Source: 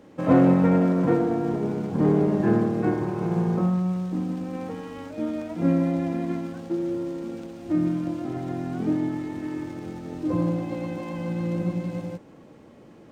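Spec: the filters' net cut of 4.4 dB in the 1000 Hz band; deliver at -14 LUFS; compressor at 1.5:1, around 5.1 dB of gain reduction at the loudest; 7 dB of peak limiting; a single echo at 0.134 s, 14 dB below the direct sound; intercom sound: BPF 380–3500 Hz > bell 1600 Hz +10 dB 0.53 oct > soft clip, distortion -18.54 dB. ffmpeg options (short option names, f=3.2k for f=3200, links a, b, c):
-af "equalizer=f=1k:t=o:g=-8.5,acompressor=threshold=-28dB:ratio=1.5,alimiter=limit=-19.5dB:level=0:latency=1,highpass=380,lowpass=3.5k,equalizer=f=1.6k:t=o:w=0.53:g=10,aecho=1:1:134:0.2,asoftclip=threshold=-27.5dB,volume=23dB"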